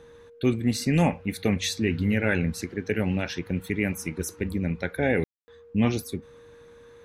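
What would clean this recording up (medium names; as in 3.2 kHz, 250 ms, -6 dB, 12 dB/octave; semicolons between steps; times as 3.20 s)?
band-stop 470 Hz, Q 30; room tone fill 5.24–5.48 s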